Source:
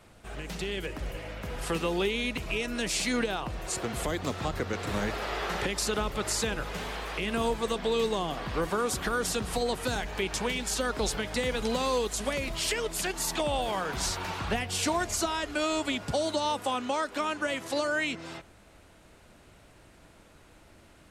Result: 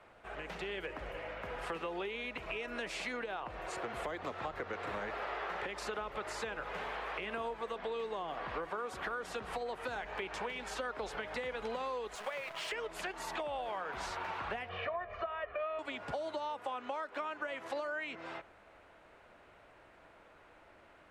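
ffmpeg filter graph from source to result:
-filter_complex "[0:a]asettb=1/sr,asplit=3[a][b][c];[a]atrim=end=12.154[d];[b]atrim=start=12.15:end=12.72,asetpts=PTS-STARTPTS,afade=t=in:d=0.004:c=qsin,afade=t=out:st=0.566:d=0.004:c=qsin,highpass=f=130:w=0.5412,highpass=f=130:w=1.3066,equalizer=f=270:w=1.6:g=-14,acrusher=bits=7:dc=4:mix=0:aa=0.000001[e];[c]atrim=start=12.716[f];[d][e]acrossfade=d=0.004:c1=hsin:c2=qsin[g];[g][f]acrossfade=d=0.004:c1=qsin:c2=hsin,asettb=1/sr,asplit=3[h][i][j];[h]atrim=end=14.694[k];[i]atrim=start=14.69:end=15.79,asetpts=PTS-STARTPTS,afade=t=in:d=0.004:c=qsin,afade=t=out:st=1.096:d=0.004:c=qsin,lowpass=f=2.6k:w=0.5412,lowpass=f=2.6k:w=1.3066,aecho=1:1:1.7:0.92,atrim=end_sample=48510[l];[j]atrim=start=15.786[m];[k][l]acrossfade=d=0.004:c1=hsin:c2=qsin[n];[n][m]acrossfade=d=0.004:c1=qsin:c2=hsin,acrossover=split=420 2700:gain=0.2 1 0.178[o][p][q];[o][p][q]amix=inputs=3:normalize=0,acompressor=threshold=-37dB:ratio=6,highshelf=f=7.6k:g=-7,volume=1dB"

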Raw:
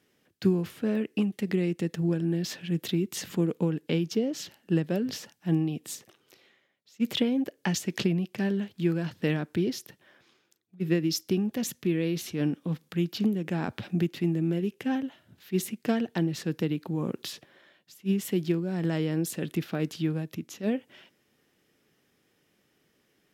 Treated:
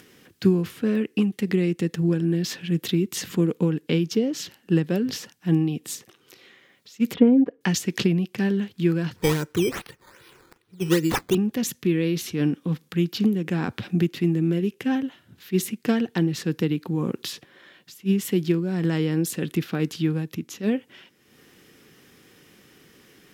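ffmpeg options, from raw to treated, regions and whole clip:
-filter_complex "[0:a]asettb=1/sr,asplit=3[a][b][c];[a]atrim=end=7.144[d];[b]atrim=start=7.14:end=7.61,asetpts=PTS-STARTPTS,afade=t=in:d=0.004:c=qsin,afade=t=out:st=0.466:d=0.004:c=qsin,lowpass=1.1k,aecho=1:1:4.2:0.9,atrim=end_sample=20727[e];[c]atrim=start=7.606[f];[d][e]acrossfade=d=0.004:c1=hsin:c2=qsin[g];[g][f]acrossfade=d=0.004:c1=qsin:c2=hsin,asettb=1/sr,asplit=3[h][i][j];[h]atrim=end=9.164[k];[i]atrim=start=9.16:end=11.35,asetpts=PTS-STARTPTS,afade=t=in:d=0.004:c=qsin,afade=t=out:st=2.186:d=0.004:c=qsin,aecho=1:1:2.1:0.67,atrim=end_sample=96579,acrusher=samples=11:mix=1:aa=0.000001:lfo=1:lforange=11:lforate=2.5[l];[j]atrim=start=11.346[m];[k][l]acrossfade=d=0.004:c1=hsin:c2=qsin[n];[n][m]acrossfade=d=0.004:c1=qsin:c2=hsin,equalizer=f=630:t=o:w=0.24:g=-9.5,bandreject=f=850:w=16,acompressor=mode=upward:threshold=-47dB:ratio=2.5,volume=5dB"

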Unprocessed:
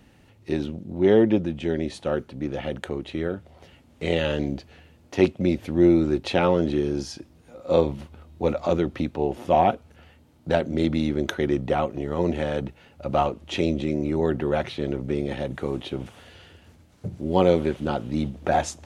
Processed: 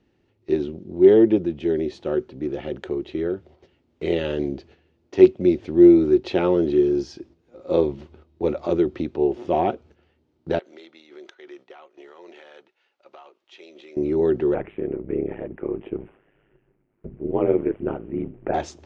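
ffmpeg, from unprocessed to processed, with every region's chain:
-filter_complex "[0:a]asettb=1/sr,asplit=3[a][b][c];[a]atrim=end=10.594[d];[b]atrim=start=10.59:end=13.97,asetpts=PTS-STARTPTS,afade=t=in:d=0.004:c=qsin,afade=t=out:st=3.376:d=0.004:c=qsin,highpass=1k,acompressor=threshold=-41dB:ratio=4:attack=3.2:release=140:knee=1:detection=peak[e];[c]atrim=start=13.966[f];[d][e]acrossfade=d=0.004:c1=hsin:c2=qsin[g];[g][f]acrossfade=d=0.004:c1=qsin:c2=hsin,asettb=1/sr,asplit=3[h][i][j];[h]atrim=end=14.544[k];[i]atrim=start=14.54:end=18.54,asetpts=PTS-STARTPTS,afade=t=in:d=0.004:c=qsin,afade=t=out:st=3.996:d=0.004:c=qsin,aphaser=in_gain=1:out_gain=1:delay=4.8:decay=0.27:speed=1.5:type=sinusoidal,aeval=exprs='val(0)*sin(2*PI*52*n/s)':c=same,asuperstop=centerf=5200:order=8:qfactor=0.74[l];[j]atrim=start=18.536[m];[k][l]acrossfade=d=0.004:c1=hsin:c2=qsin[n];[n][m]acrossfade=d=0.004:c1=qsin:c2=hsin,lowpass=f=6.1k:w=0.5412,lowpass=f=6.1k:w=1.3066,equalizer=f=370:t=o:w=0.49:g=13,agate=range=-9dB:threshold=-43dB:ratio=16:detection=peak,volume=-4.5dB"

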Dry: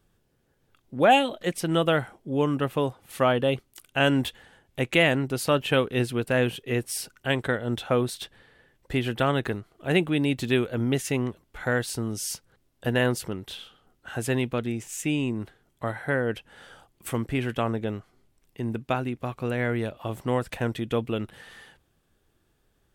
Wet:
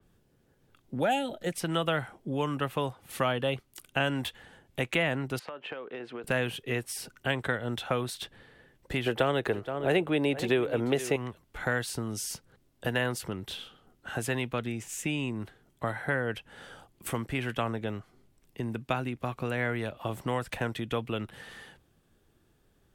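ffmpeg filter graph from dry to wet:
-filter_complex "[0:a]asettb=1/sr,asplit=3[a][b][c];[a]atrim=end=1.034[d];[b]atrim=start=1.03:end=1.53,asetpts=PTS-STARTPTS,afade=t=in:d=0.004:c=qsin,afade=t=out:st=0.496:d=0.004:c=qsin,asuperstop=centerf=1100:order=4:qfactor=4.2,equalizer=f=2.6k:w=0.86:g=-7.5[e];[c]atrim=start=1.526[f];[d][e]acrossfade=d=0.004:c1=hsin:c2=qsin[g];[g][f]acrossfade=d=0.004:c1=qsin:c2=hsin,asettb=1/sr,asplit=3[h][i][j];[h]atrim=end=5.394[k];[i]atrim=start=5.39:end=6.24,asetpts=PTS-STARTPTS,afade=t=in:d=0.004:c=qsin,afade=t=out:st=0.846:d=0.004:c=qsin,highpass=510,lowpass=2k,acompressor=threshold=-35dB:ratio=20:attack=3.2:release=140:knee=1:detection=peak[l];[j]atrim=start=6.236[m];[k][l]acrossfade=d=0.004:c1=hsin:c2=qsin[n];[n][m]acrossfade=d=0.004:c1=qsin:c2=hsin,asettb=1/sr,asplit=3[o][p][q];[o]atrim=end=9.064[r];[p]atrim=start=9.06:end=11.16,asetpts=PTS-STARTPTS,afade=t=in:d=0.004:c=qsin,afade=t=out:st=2.096:d=0.004:c=qsin,equalizer=f=440:t=o:w=1.8:g=14.5,aecho=1:1:472:0.141,atrim=end_sample=92610[s];[q]atrim=start=11.156[t];[r][s]acrossfade=d=0.004:c1=hsin:c2=qsin[u];[u][t]acrossfade=d=0.004:c1=qsin:c2=hsin,equalizer=f=200:w=0.48:g=4,acrossover=split=150|650|1900[v][w][x][y];[v]acompressor=threshold=-39dB:ratio=4[z];[w]acompressor=threshold=-36dB:ratio=4[aa];[x]acompressor=threshold=-29dB:ratio=4[ab];[y]acompressor=threshold=-33dB:ratio=4[ac];[z][aa][ab][ac]amix=inputs=4:normalize=0,adynamicequalizer=threshold=0.00501:dfrequency=3900:dqfactor=0.7:tfrequency=3900:tqfactor=0.7:attack=5:release=100:ratio=0.375:range=1.5:mode=cutabove:tftype=highshelf"

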